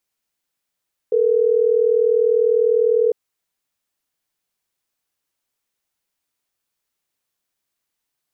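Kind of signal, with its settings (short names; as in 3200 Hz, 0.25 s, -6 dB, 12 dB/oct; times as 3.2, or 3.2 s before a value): call progress tone ringback tone, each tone -16 dBFS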